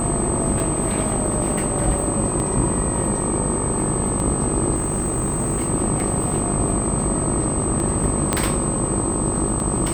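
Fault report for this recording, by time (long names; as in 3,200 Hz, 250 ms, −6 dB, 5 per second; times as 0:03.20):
mains buzz 50 Hz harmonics 26 −27 dBFS
scratch tick 33 1/3 rpm
whistle 8,200 Hz −25 dBFS
0:04.75–0:05.69: clipping −17 dBFS
0:08.33: click −3 dBFS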